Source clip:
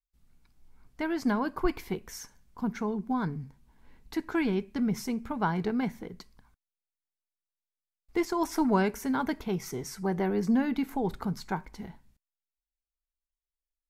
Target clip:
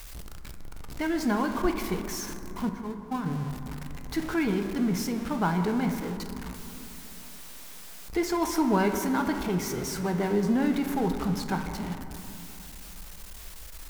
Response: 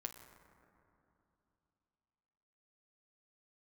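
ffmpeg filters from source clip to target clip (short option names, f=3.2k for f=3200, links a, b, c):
-filter_complex "[0:a]aeval=exprs='val(0)+0.5*0.02*sgn(val(0))':c=same,asettb=1/sr,asplit=3[a][b][c];[a]atrim=end=2.694[d];[b]atrim=start=2.69:end=3.26,asetpts=PTS-STARTPTS,afade=t=in:d=0.004:c=qsin,afade=t=out:st=0.566:d=0.004:c=qsin,agate=range=-17dB:threshold=-26dB:ratio=16:detection=peak[e];[c]atrim=start=3.256[f];[d][e]acrossfade=d=0.004:c1=hsin:c2=qsin[g];[g][f]acrossfade=d=0.004:c1=qsin:c2=hsin[h];[1:a]atrim=start_sample=2205,asetrate=43218,aresample=44100[i];[h][i]afir=irnorm=-1:irlink=0,volume=3.5dB"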